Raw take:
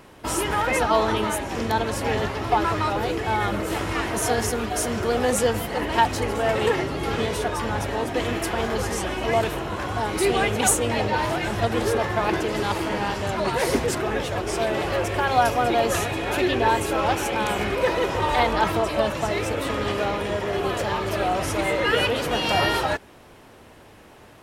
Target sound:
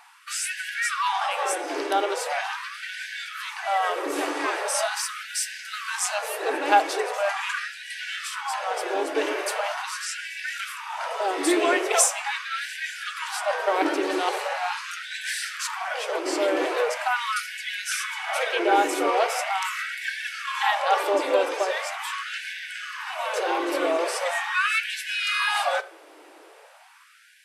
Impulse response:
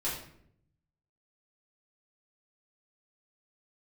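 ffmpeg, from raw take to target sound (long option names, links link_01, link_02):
-filter_complex "[0:a]bandreject=frequency=7600:width=21,asetrate=39249,aresample=44100,asplit=2[link_01][link_02];[1:a]atrim=start_sample=2205[link_03];[link_02][link_03]afir=irnorm=-1:irlink=0,volume=-18.5dB[link_04];[link_01][link_04]amix=inputs=2:normalize=0,afftfilt=real='re*gte(b*sr/1024,270*pow(1500/270,0.5+0.5*sin(2*PI*0.41*pts/sr)))':imag='im*gte(b*sr/1024,270*pow(1500/270,0.5+0.5*sin(2*PI*0.41*pts/sr)))':win_size=1024:overlap=0.75"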